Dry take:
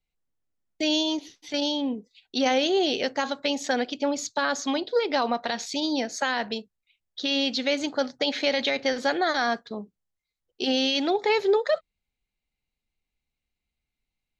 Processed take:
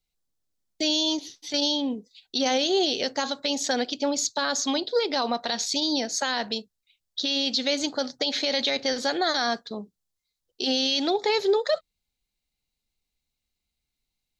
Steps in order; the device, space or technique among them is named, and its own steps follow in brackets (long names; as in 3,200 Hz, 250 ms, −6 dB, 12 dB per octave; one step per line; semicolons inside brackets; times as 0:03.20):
over-bright horn tweeter (high shelf with overshoot 3,200 Hz +6 dB, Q 1.5; brickwall limiter −14 dBFS, peak gain reduction 5.5 dB)